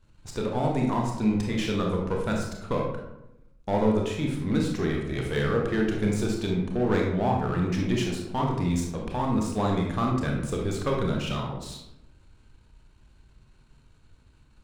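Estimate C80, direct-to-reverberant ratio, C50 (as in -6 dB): 6.5 dB, -0.5 dB, 3.0 dB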